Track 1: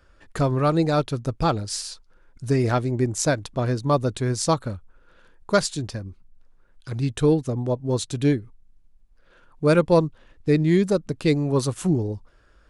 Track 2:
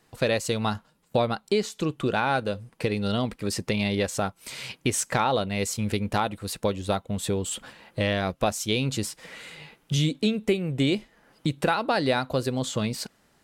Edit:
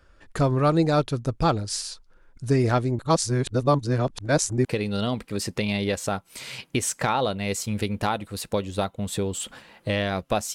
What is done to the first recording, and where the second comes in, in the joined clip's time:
track 1
2.99–4.65 reverse
4.65 switch to track 2 from 2.76 s

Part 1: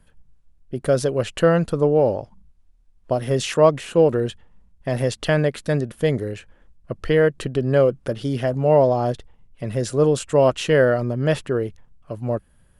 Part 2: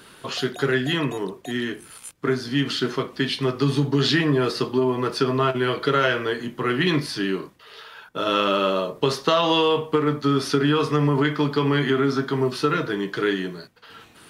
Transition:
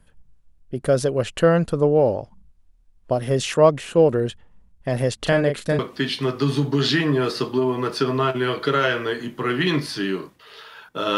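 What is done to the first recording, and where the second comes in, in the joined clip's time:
part 1
5.18–5.79 doubler 36 ms -5.5 dB
5.79 switch to part 2 from 2.99 s

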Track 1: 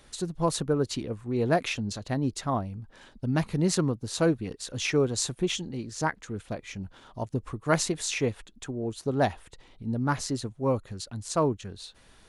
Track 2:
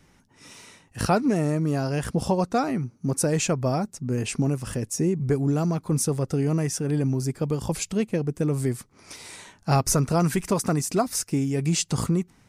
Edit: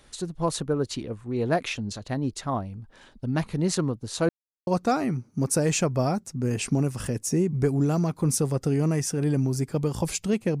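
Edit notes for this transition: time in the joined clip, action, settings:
track 1
4.29–4.67 mute
4.67 switch to track 2 from 2.34 s

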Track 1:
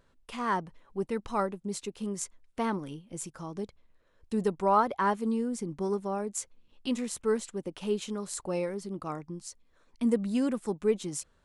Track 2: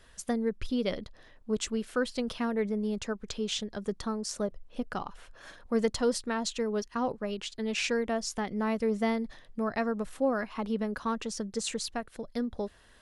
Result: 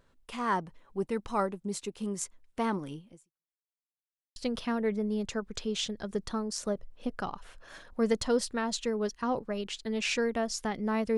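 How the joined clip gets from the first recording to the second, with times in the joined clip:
track 1
3.08–3.59 fade out exponential
3.59–4.36 mute
4.36 switch to track 2 from 2.09 s

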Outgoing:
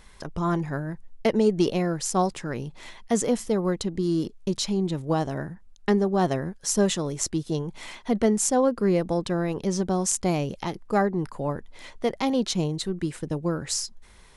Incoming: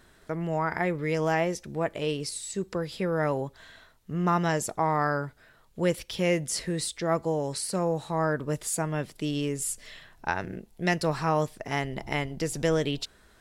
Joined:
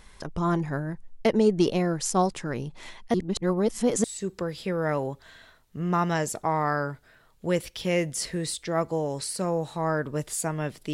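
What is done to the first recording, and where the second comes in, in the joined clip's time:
outgoing
3.14–4.04 reverse
4.04 switch to incoming from 2.38 s

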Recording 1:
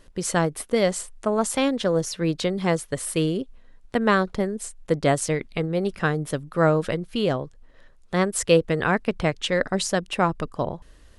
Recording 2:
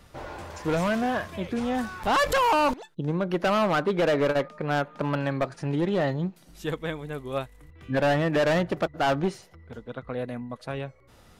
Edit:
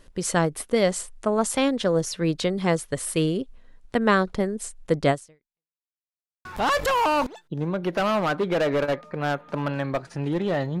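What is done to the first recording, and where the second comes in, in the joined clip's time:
recording 1
5.1–5.79 fade out exponential
5.79–6.45 mute
6.45 switch to recording 2 from 1.92 s

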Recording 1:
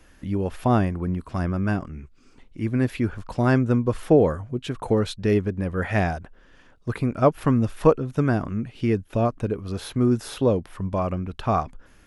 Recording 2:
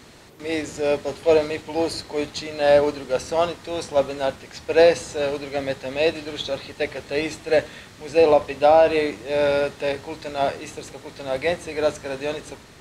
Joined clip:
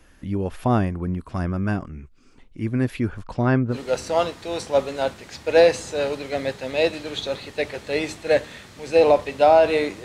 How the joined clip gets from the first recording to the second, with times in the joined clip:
recording 1
3.23–3.78 LPF 9900 Hz -> 1300 Hz
3.73 switch to recording 2 from 2.95 s, crossfade 0.10 s

